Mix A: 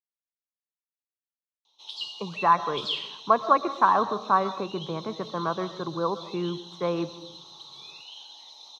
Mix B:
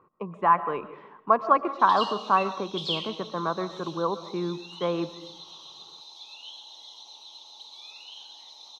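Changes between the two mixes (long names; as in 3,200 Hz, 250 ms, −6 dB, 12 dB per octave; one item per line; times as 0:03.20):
speech: entry −2.00 s
master: add parametric band 130 Hz −11 dB 0.25 octaves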